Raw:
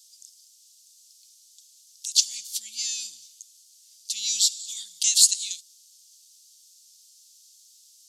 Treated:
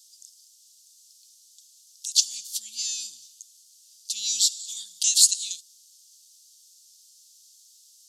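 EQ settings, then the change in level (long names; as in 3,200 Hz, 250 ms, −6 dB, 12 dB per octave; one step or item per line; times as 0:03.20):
parametric band 2,100 Hz −12.5 dB 0.35 octaves
0.0 dB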